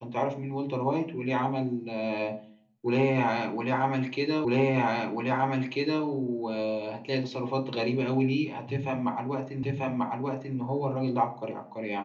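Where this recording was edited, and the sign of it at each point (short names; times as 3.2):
4.45 repeat of the last 1.59 s
9.63 repeat of the last 0.94 s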